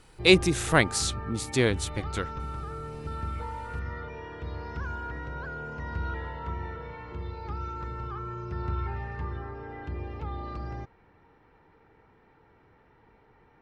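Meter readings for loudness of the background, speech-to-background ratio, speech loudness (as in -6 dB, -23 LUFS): -37.0 LUFS, 12.0 dB, -25.0 LUFS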